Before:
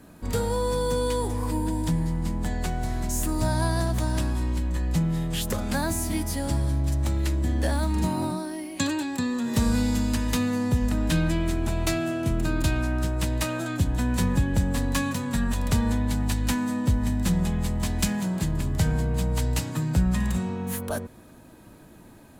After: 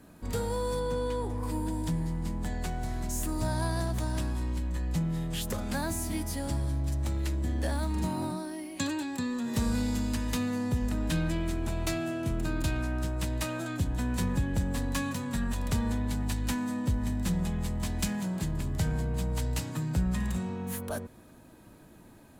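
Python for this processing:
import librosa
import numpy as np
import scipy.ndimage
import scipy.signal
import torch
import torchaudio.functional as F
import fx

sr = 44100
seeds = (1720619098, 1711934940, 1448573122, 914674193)

p1 = fx.high_shelf(x, sr, hz=fx.line((0.79, 5900.0), (1.42, 3000.0)), db=-11.5, at=(0.79, 1.42), fade=0.02)
p2 = 10.0 ** (-27.0 / 20.0) * np.tanh(p1 / 10.0 ** (-27.0 / 20.0))
p3 = p1 + F.gain(torch.from_numpy(p2), -9.0).numpy()
y = F.gain(torch.from_numpy(p3), -7.0).numpy()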